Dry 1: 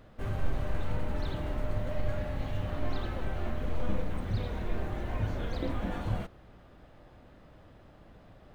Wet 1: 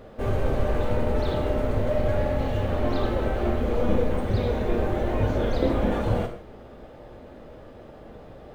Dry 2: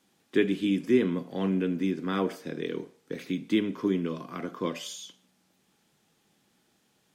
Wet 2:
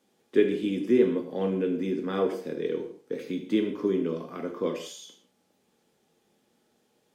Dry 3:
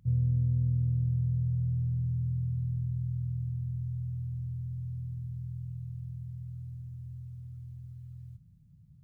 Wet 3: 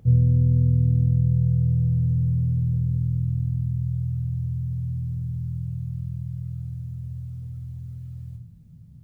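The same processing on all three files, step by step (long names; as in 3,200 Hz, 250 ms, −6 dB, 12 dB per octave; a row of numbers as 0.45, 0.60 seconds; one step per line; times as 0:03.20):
parametric band 470 Hz +9.5 dB 1.3 octaves
reverb whose tail is shaped and stops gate 190 ms falling, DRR 4.5 dB
normalise the peak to −9 dBFS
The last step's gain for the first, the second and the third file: +5.5, −5.0, +9.0 decibels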